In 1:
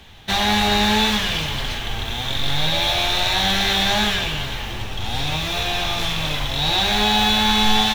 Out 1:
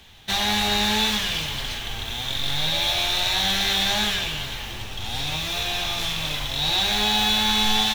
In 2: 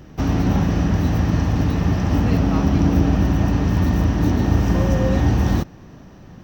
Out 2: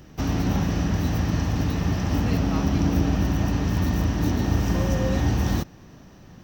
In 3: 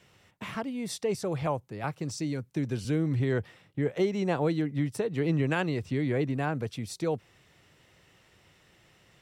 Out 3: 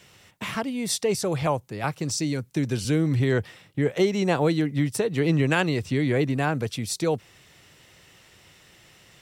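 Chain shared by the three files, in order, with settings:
treble shelf 2.8 kHz +7.5 dB; peak normalisation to -9 dBFS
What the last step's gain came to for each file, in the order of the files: -6.5 dB, -5.0 dB, +5.0 dB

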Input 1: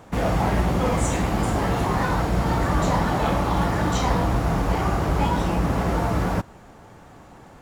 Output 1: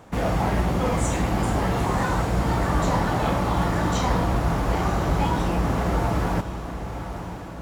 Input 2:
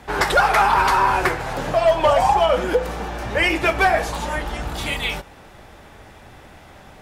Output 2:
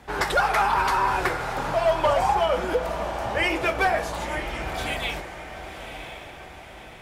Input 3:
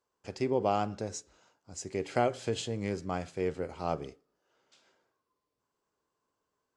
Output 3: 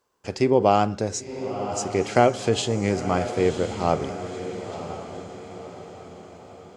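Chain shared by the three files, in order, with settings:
echo that smears into a reverb 1010 ms, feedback 48%, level -10 dB; normalise loudness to -24 LUFS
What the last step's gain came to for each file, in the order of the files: -1.5 dB, -5.5 dB, +10.5 dB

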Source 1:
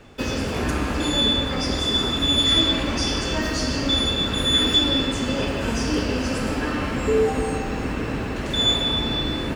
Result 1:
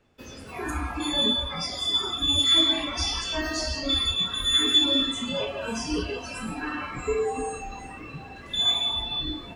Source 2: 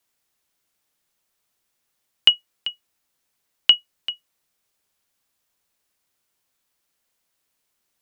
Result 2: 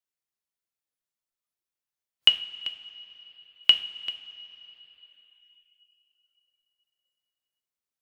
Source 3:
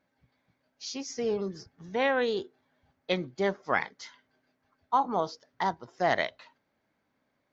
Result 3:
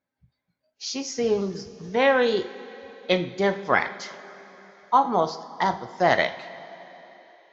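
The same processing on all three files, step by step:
two-slope reverb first 0.44 s, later 4.1 s, from -16 dB, DRR 7.5 dB; spectral noise reduction 16 dB; normalise loudness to -24 LUFS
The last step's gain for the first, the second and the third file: -2.5 dB, -3.0 dB, +6.0 dB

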